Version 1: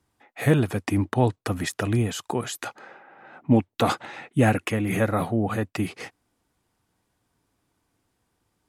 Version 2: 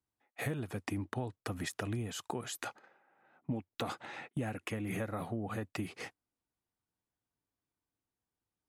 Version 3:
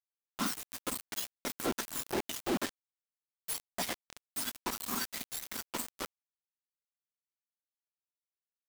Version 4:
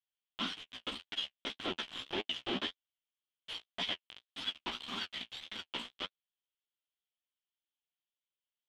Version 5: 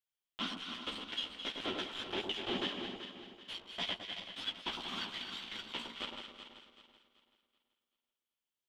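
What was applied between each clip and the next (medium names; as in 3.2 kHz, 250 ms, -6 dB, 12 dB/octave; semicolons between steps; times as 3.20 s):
gate -42 dBFS, range -14 dB; compression 6:1, threshold -28 dBFS, peak gain reduction 14.5 dB; trim -6 dB
spectrum inverted on a logarithmic axis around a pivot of 1.6 kHz; companded quantiser 2-bit; trim -2.5 dB
resonant low-pass 3.2 kHz, resonance Q 6.4; flange 1.8 Hz, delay 9.1 ms, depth 8.8 ms, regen +21%; trim -2 dB
backward echo that repeats 191 ms, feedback 58%, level -7 dB; echo whose repeats swap between lows and highs 107 ms, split 1.2 kHz, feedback 54%, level -4.5 dB; trim -1.5 dB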